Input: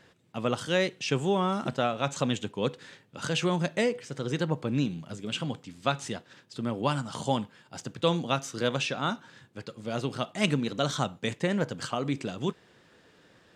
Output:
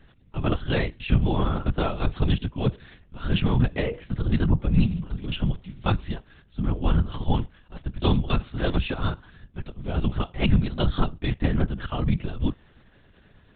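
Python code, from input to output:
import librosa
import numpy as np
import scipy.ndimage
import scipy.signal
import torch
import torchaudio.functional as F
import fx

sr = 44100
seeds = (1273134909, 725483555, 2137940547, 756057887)

y = fx.low_shelf_res(x, sr, hz=200.0, db=11.0, q=1.5)
y = fx.lpc_vocoder(y, sr, seeds[0], excitation='whisper', order=10)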